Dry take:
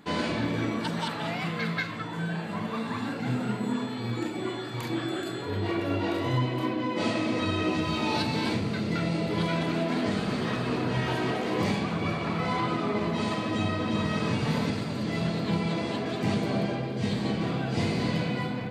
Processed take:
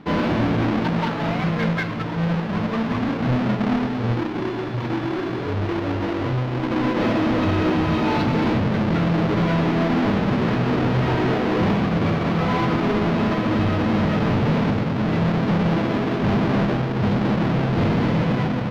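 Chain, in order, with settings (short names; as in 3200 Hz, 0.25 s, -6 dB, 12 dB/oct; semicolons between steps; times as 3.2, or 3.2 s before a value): half-waves squared off; 4.19–6.71 compressor, threshold -26 dBFS, peak gain reduction 7 dB; overloaded stage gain 21.5 dB; air absorption 270 m; gain +5 dB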